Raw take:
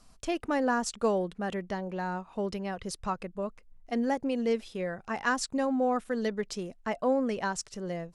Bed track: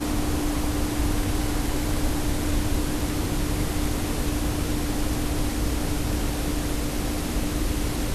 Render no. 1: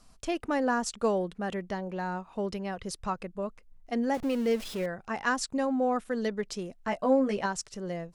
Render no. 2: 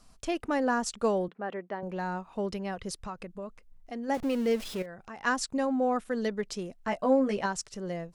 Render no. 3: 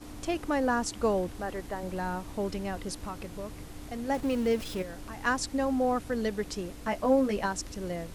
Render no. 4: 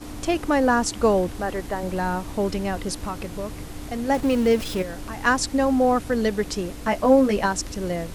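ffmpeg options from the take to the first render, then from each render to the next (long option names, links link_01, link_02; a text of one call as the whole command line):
ffmpeg -i in.wav -filter_complex "[0:a]asettb=1/sr,asplit=3[link_01][link_02][link_03];[link_01]atrim=end=4.144[link_04];[link_02]atrim=start=4.14:end=4.86,asetpts=PTS-STARTPTS,afade=type=in:duration=0.004:curve=qsin,afade=type=out:start_time=0.716:duration=0.004:curve=qsin,aeval=exprs='val(0)+0.5*0.0133*sgn(val(0))':channel_layout=same[link_05];[link_03]atrim=start=4.856[link_06];[link_04][link_05]acrossfade=duration=0.004:curve1=hsin:curve2=qsin[link_07];[link_07][link_06]acrossfade=duration=0.004:curve1=qsin:curve2=hsin,asettb=1/sr,asplit=3[link_08][link_09][link_10];[link_08]atrim=end=6.794[link_11];[link_09]atrim=start=6.79:end=7.46,asetpts=PTS-STARTPTS,afade=type=in:duration=0.004:curve=qsin,afade=type=out:start_time=0.666:duration=0.004:curve=qsin,asplit=2[link_12][link_13];[link_13]adelay=15,volume=-4dB[link_14];[link_12][link_14]amix=inputs=2:normalize=0,atrim=end_sample=29547[link_15];[link_10]atrim=start=7.456[link_16];[link_11][link_15]acrossfade=duration=0.004:curve1=hsin:curve2=qsin[link_17];[link_17][link_16]acrossfade=duration=0.004:curve1=qsin:curve2=hsin" out.wav
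ffmpeg -i in.wav -filter_complex "[0:a]asettb=1/sr,asplit=3[link_01][link_02][link_03];[link_01]atrim=end=1.284[link_04];[link_02]atrim=start=1.28:end=1.83,asetpts=PTS-STARTPTS,afade=type=in:duration=0.004:curve=qsin,afade=type=out:start_time=0.546:duration=0.004:curve=qsin,highpass=310,lowpass=2000[link_05];[link_03]atrim=start=1.826[link_06];[link_04][link_05]acrossfade=duration=0.004:curve1=hsin:curve2=qsin[link_07];[link_07][link_06]acrossfade=duration=0.004:curve1=qsin:curve2=hsin,asplit=3[link_08][link_09][link_10];[link_08]afade=type=out:start_time=2.94:duration=0.02[link_11];[link_09]acompressor=threshold=-37dB:ratio=2.5:attack=3.2:release=140:knee=1:detection=peak,afade=type=in:start_time=2.94:duration=0.02,afade=type=out:start_time=4.08:duration=0.02[link_12];[link_10]afade=type=in:start_time=4.08:duration=0.02[link_13];[link_11][link_12][link_13]amix=inputs=3:normalize=0,asettb=1/sr,asplit=3[link_14][link_15][link_16];[link_14]atrim=end=4.824[link_17];[link_15]atrim=start=4.82:end=5.24,asetpts=PTS-STARTPTS,afade=type=in:duration=0.004:curve=qsin,afade=type=out:start_time=0.416:duration=0.004:curve=qsin,acompressor=threshold=-44dB:ratio=2.5:attack=3.2:release=140:knee=1:detection=peak[link_18];[link_16]atrim=start=5.236[link_19];[link_17][link_18]acrossfade=duration=0.004:curve1=hsin:curve2=qsin[link_20];[link_20][link_19]acrossfade=duration=0.004:curve1=qsin:curve2=hsin" out.wav
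ffmpeg -i in.wav -i bed.wav -filter_complex "[1:a]volume=-18.5dB[link_01];[0:a][link_01]amix=inputs=2:normalize=0" out.wav
ffmpeg -i in.wav -af "volume=8dB" out.wav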